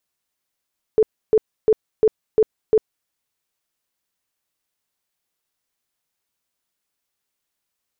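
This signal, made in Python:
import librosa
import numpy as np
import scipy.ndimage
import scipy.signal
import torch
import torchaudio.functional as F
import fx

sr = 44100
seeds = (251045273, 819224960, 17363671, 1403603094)

y = fx.tone_burst(sr, hz=435.0, cycles=21, every_s=0.35, bursts=6, level_db=-10.0)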